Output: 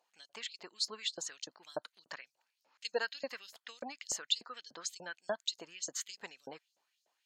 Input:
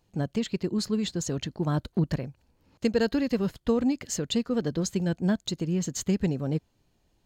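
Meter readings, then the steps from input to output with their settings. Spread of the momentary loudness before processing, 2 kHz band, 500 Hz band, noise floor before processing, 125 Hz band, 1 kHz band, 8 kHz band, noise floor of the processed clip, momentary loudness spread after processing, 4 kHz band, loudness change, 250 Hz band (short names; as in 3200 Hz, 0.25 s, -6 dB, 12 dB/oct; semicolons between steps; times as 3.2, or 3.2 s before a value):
5 LU, -3.0 dB, -13.5 dB, -70 dBFS, -38.0 dB, -7.5 dB, -4.5 dB, -85 dBFS, 14 LU, -1.0 dB, -11.5 dB, -30.0 dB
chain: LFO high-pass saw up 3.4 Hz 580–6500 Hz; spectral gate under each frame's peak -30 dB strong; gain -6 dB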